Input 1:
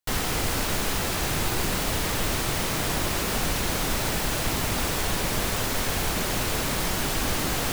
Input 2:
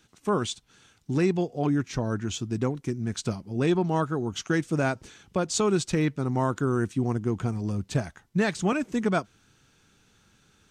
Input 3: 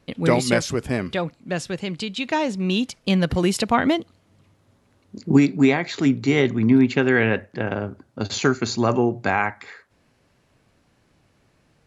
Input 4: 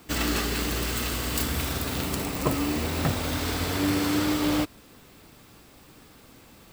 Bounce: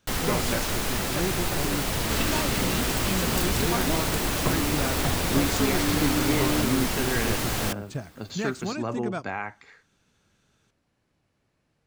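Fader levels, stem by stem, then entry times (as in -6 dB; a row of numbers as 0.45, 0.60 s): -1.5, -7.0, -11.0, -2.5 dB; 0.00, 0.00, 0.00, 2.00 s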